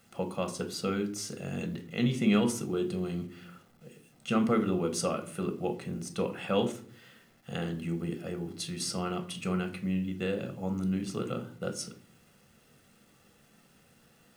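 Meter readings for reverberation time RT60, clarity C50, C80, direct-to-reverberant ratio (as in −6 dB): 0.50 s, 13.0 dB, 17.5 dB, 6.0 dB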